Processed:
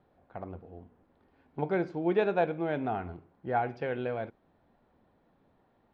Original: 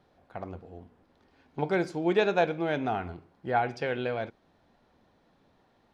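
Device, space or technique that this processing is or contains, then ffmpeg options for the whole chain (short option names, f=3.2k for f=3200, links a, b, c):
phone in a pocket: -af "lowpass=3.6k,highshelf=f=2k:g=-8,volume=-1.5dB"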